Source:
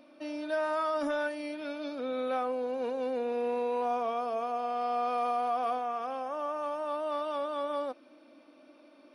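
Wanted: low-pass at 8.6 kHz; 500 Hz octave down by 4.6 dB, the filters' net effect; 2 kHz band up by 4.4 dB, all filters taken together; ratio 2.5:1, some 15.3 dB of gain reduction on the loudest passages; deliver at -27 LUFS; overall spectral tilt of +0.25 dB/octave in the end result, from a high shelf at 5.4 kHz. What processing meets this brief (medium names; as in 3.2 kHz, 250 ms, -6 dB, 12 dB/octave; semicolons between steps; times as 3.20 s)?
low-pass 8.6 kHz; peaking EQ 500 Hz -6 dB; peaking EQ 2 kHz +6.5 dB; treble shelf 5.4 kHz +5.5 dB; compression 2.5:1, threshold -52 dBFS; trim +21 dB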